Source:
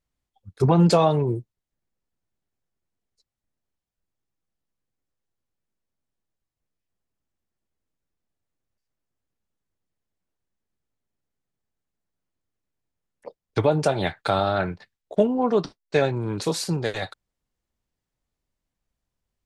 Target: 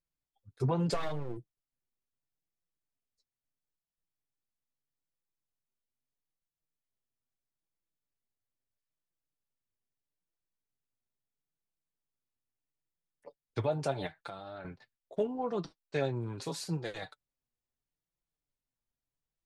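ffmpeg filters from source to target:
-filter_complex "[0:a]asplit=3[a][b][c];[a]afade=t=out:st=0.93:d=0.02[d];[b]aeval=exprs='max(val(0),0)':c=same,afade=t=in:st=0.93:d=0.02,afade=t=out:st=1.36:d=0.02[e];[c]afade=t=in:st=1.36:d=0.02[f];[d][e][f]amix=inputs=3:normalize=0,asettb=1/sr,asplit=3[g][h][i];[g]atrim=end=14.064[j];[h]atrim=start=14.06:end=14.65,asetpts=PTS-STARTPTS,afade=t=in:d=0.004:c=qsin,afade=t=out:st=0.586:d=0.004:c=qsin,acompressor=threshold=-30dB:ratio=6[k];[i]atrim=start=14.646[l];[j][k]acrossfade=d=0.004:c1=hsin:c2=qsin[m];[m][l]acrossfade=d=0.004:c1=qsin:c2=hsin,flanger=delay=5.7:depth=2.7:regen=33:speed=0.77:shape=triangular,volume=-8dB"

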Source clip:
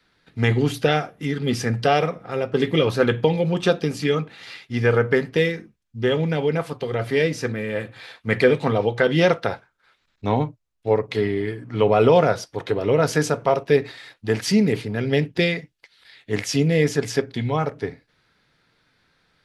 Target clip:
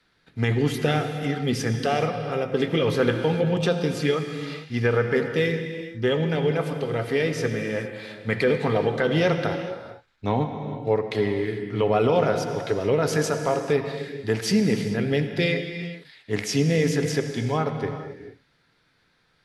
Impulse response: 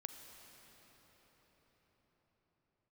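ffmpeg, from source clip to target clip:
-filter_complex "[0:a]alimiter=limit=-9.5dB:level=0:latency=1[a];[1:a]atrim=start_sample=2205,afade=t=out:st=0.31:d=0.01,atrim=end_sample=14112,asetrate=25137,aresample=44100[b];[a][b]afir=irnorm=-1:irlink=0"

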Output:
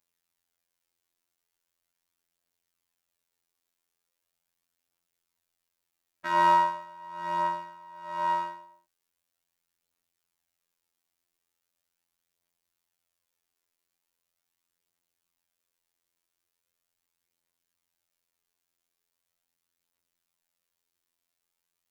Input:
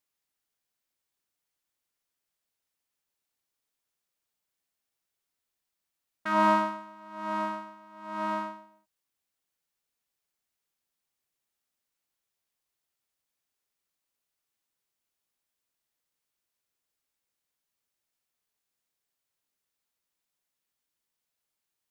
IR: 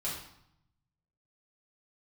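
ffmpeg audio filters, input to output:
-af "afftfilt=real='hypot(re,im)*cos(PI*b)':imag='0':win_size=2048:overlap=0.75,aphaser=in_gain=1:out_gain=1:delay=3.1:decay=0.26:speed=0.4:type=triangular,volume=5dB"

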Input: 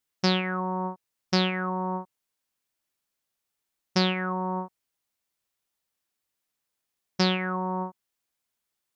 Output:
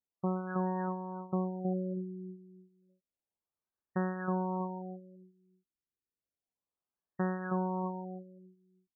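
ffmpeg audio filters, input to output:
-filter_complex "[0:a]bandreject=f=1.4k:w=13,asplit=2[a][b];[b]adelay=319,lowpass=f=1.9k:p=1,volume=-4.5dB,asplit=2[c][d];[d]adelay=319,lowpass=f=1.9k:p=1,volume=0.25,asplit=2[e][f];[f]adelay=319,lowpass=f=1.9k:p=1,volume=0.25[g];[a][c][e][g]amix=inputs=4:normalize=0,afftfilt=real='re*lt(b*sr/1024,410*pow(1900/410,0.5+0.5*sin(2*PI*0.31*pts/sr)))':imag='im*lt(b*sr/1024,410*pow(1900/410,0.5+0.5*sin(2*PI*0.31*pts/sr)))':win_size=1024:overlap=0.75,volume=-8dB"

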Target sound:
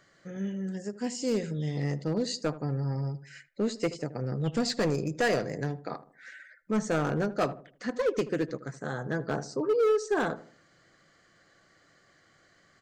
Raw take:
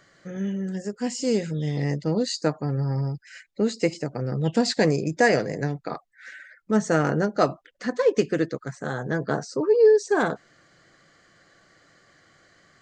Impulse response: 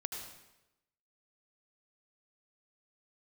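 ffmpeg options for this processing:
-filter_complex "[0:a]volume=16dB,asoftclip=hard,volume=-16dB,asplit=2[a][b];[b]adelay=78,lowpass=f=1k:p=1,volume=-14dB,asplit=2[c][d];[d]adelay=78,lowpass=f=1k:p=1,volume=0.42,asplit=2[e][f];[f]adelay=78,lowpass=f=1k:p=1,volume=0.42,asplit=2[g][h];[h]adelay=78,lowpass=f=1k:p=1,volume=0.42[i];[a][c][e][g][i]amix=inputs=5:normalize=0,volume=-5dB"

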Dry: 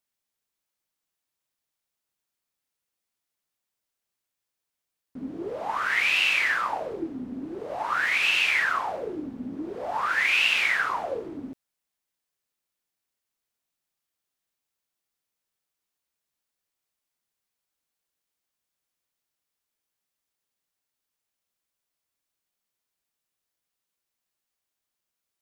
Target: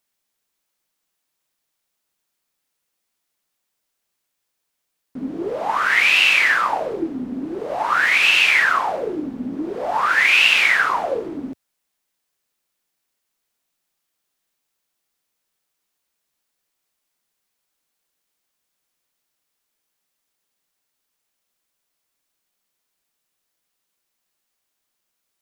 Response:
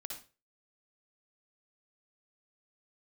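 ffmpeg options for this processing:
-af "equalizer=f=85:t=o:w=0.77:g=-8.5,volume=8dB"

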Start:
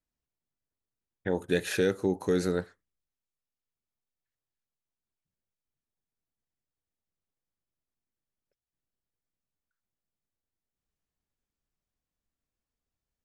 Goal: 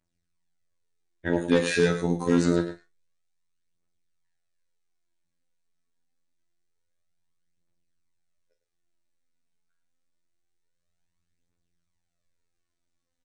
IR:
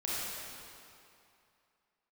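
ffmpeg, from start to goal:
-filter_complex "[0:a]aphaser=in_gain=1:out_gain=1:delay=4.7:decay=0.59:speed=0.26:type=triangular,afftfilt=real='hypot(re,im)*cos(PI*b)':imag='0':win_size=2048:overlap=0.75,volume=18dB,asoftclip=hard,volume=-18dB,asplit=2[a][b];[b]adelay=41,volume=-10.5dB[c];[a][c]amix=inputs=2:normalize=0,aecho=1:1:105:0.282,volume=7.5dB" -ar 22050 -c:a libmp3lame -b:a 40k

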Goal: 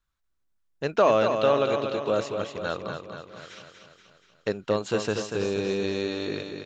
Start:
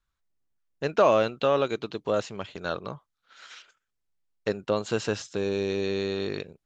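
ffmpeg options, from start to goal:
-af "aecho=1:1:239|478|717|956|1195|1434|1673:0.473|0.27|0.154|0.0876|0.0499|0.0285|0.0162"

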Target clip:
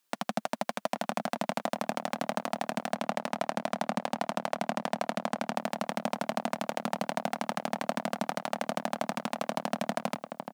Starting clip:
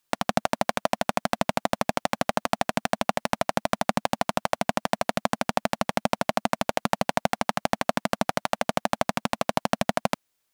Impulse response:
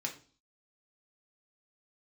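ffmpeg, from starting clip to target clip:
-filter_complex "[0:a]asettb=1/sr,asplit=3[a][b][c];[a]atrim=end=2.954[d];[b]atrim=start=2.95:end=5.55,asetpts=PTS-STARTPTS,afade=t=in:d=0.004:c=qsin,afade=t=out:st=2.596:d=0.004:c=qsin,highshelf=f=7.9k:g=-6[e];[c]atrim=start=5.546[f];[d][e]acrossfade=d=0.004:c1=hsin:c2=qsin[g];[g][f]acrossfade=d=0.004:c1=qsin:c2=hsin,asplit=2[h][i];[i]adelay=826,lowpass=f=1.3k:p=1,volume=-13dB,asplit=2[j][k];[k]adelay=826,lowpass=f=1.3k:p=1,volume=0.24,asplit=2[l][m];[m]adelay=826,lowpass=f=1.3k:p=1,volume=0.24[n];[h][j][l][n]amix=inputs=4:normalize=0,alimiter=limit=-12dB:level=0:latency=1:release=13,highpass=f=160:w=0.5412,highpass=f=160:w=1.3066"

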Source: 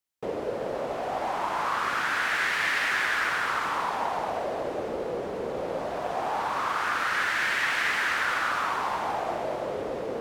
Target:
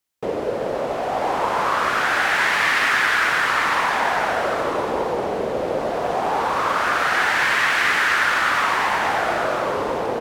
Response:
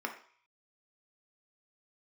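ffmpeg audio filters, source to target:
-af "aecho=1:1:952:0.501,volume=7dB"

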